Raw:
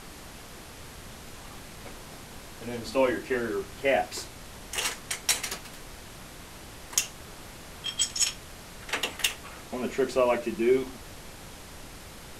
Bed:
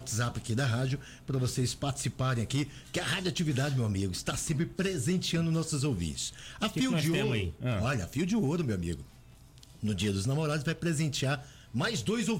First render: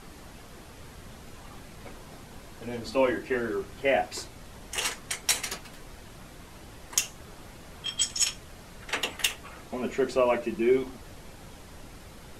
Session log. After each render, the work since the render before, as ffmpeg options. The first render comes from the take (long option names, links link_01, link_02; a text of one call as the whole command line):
ffmpeg -i in.wav -af "afftdn=noise_reduction=6:noise_floor=-46" out.wav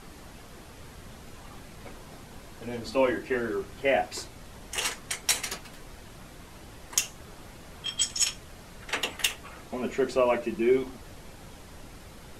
ffmpeg -i in.wav -af anull out.wav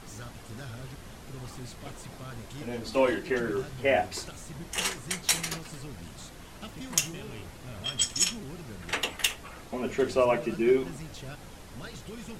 ffmpeg -i in.wav -i bed.wav -filter_complex "[1:a]volume=-13dB[link_01];[0:a][link_01]amix=inputs=2:normalize=0" out.wav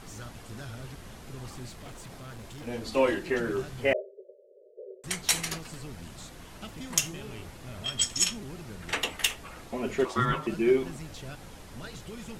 ffmpeg -i in.wav -filter_complex "[0:a]asettb=1/sr,asplit=3[link_01][link_02][link_03];[link_01]atrim=end=1.694[link_04];[link_02]atrim=start=1.69:end=2.67,asetpts=PTS-STARTPTS,afade=type=in:duration=0.004:curve=qsin,afade=type=out:start_time=0.976:duration=0.004:curve=qsin,asoftclip=type=hard:threshold=-39.5dB[link_05];[link_03]atrim=start=2.666[link_06];[link_04][link_05]acrossfade=duration=0.004:curve1=hsin:curve2=qsin[link_07];[link_07][link_06]acrossfade=duration=0.004:curve1=qsin:curve2=hsin,asettb=1/sr,asplit=3[link_08][link_09][link_10];[link_08]atrim=end=3.934[link_11];[link_09]atrim=start=3.93:end=5.04,asetpts=PTS-STARTPTS,afade=type=in:duration=0.004:curve=qsin,afade=type=out:start_time=1.106:duration=0.004:curve=qsin,asuperpass=centerf=480:order=20:qfactor=2[link_12];[link_10]atrim=start=5.036[link_13];[link_11][link_12]acrossfade=duration=0.004:curve1=hsin:curve2=qsin[link_14];[link_14][link_13]acrossfade=duration=0.004:curve1=qsin:curve2=hsin,asettb=1/sr,asplit=3[link_15][link_16][link_17];[link_15]atrim=end=10.054[link_18];[link_16]atrim=start=10.05:end=10.47,asetpts=PTS-STARTPTS,afade=type=in:duration=0.004:curve=qsin,afade=type=out:start_time=0.416:duration=0.004:curve=qsin,aeval=exprs='val(0)*sin(2*PI*750*n/s)':channel_layout=same[link_19];[link_17]atrim=start=10.466[link_20];[link_18][link_19]acrossfade=duration=0.004:curve1=hsin:curve2=qsin[link_21];[link_21][link_20]acrossfade=duration=0.004:curve1=qsin:curve2=hsin" out.wav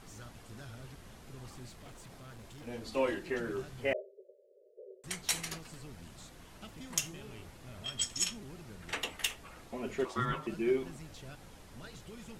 ffmpeg -i in.wav -af "volume=-7dB" out.wav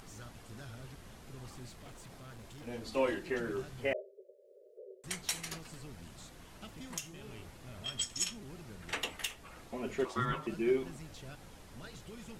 ffmpeg -i in.wav -af "acompressor=mode=upward:threshold=-53dB:ratio=2.5,alimiter=limit=-20dB:level=0:latency=1:release=309" out.wav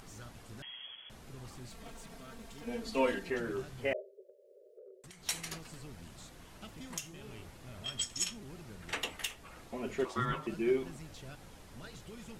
ffmpeg -i in.wav -filter_complex "[0:a]asettb=1/sr,asplit=3[link_01][link_02][link_03];[link_01]atrim=end=0.624[link_04];[link_02]atrim=start=0.62:end=1.1,asetpts=PTS-STARTPTS,afade=type=in:duration=0.004:curve=qsin,afade=type=out:start_time=0.476:duration=0.004:curve=qsin,lowpass=frequency=2900:width_type=q:width=0.5098,lowpass=frequency=2900:width_type=q:width=0.6013,lowpass=frequency=2900:width_type=q:width=0.9,lowpass=frequency=2900:width_type=q:width=2.563,afreqshift=-3400[link_05];[link_03]atrim=start=1.096[link_06];[link_04][link_05]acrossfade=duration=0.004:curve1=hsin:curve2=qsin[link_07];[link_07][link_06]acrossfade=duration=0.004:curve1=qsin:curve2=hsin,asettb=1/sr,asplit=3[link_08][link_09][link_10];[link_08]atrim=end=1.704[link_11];[link_09]atrim=start=1.7:end=3.3,asetpts=PTS-STARTPTS,afade=type=in:duration=0.004:curve=qsin,afade=type=out:start_time=1.596:duration=0.004:curve=qsin,aecho=1:1:4.4:0.79,atrim=end_sample=70560[link_12];[link_10]atrim=start=3.296[link_13];[link_11][link_12]acrossfade=duration=0.004:curve1=hsin:curve2=qsin[link_14];[link_14][link_13]acrossfade=duration=0.004:curve1=qsin:curve2=hsin,asplit=3[link_15][link_16][link_17];[link_15]afade=type=out:start_time=4.27:duration=0.02[link_18];[link_16]acompressor=threshold=-49dB:ratio=16:attack=3.2:release=140:knee=1:detection=peak,afade=type=in:start_time=4.27:duration=0.02,afade=type=out:start_time=5.25:duration=0.02[link_19];[link_17]afade=type=in:start_time=5.25:duration=0.02[link_20];[link_18][link_19][link_20]amix=inputs=3:normalize=0" out.wav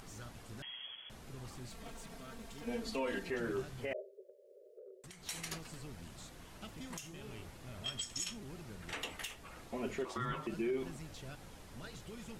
ffmpeg -i in.wav -af "alimiter=level_in=4.5dB:limit=-24dB:level=0:latency=1:release=79,volume=-4.5dB" out.wav